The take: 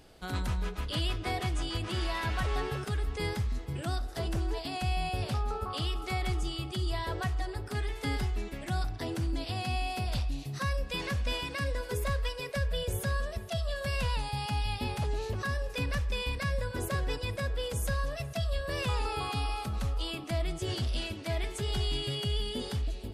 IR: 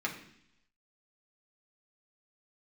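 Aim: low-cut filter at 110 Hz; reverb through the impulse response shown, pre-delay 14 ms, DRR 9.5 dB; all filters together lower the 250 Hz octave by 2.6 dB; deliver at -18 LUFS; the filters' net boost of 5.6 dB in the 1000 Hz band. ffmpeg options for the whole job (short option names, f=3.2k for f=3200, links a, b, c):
-filter_complex "[0:a]highpass=110,equalizer=f=250:t=o:g=-4,equalizer=f=1k:t=o:g=7.5,asplit=2[a][b];[1:a]atrim=start_sample=2205,adelay=14[c];[b][c]afir=irnorm=-1:irlink=0,volume=-15dB[d];[a][d]amix=inputs=2:normalize=0,volume=15.5dB"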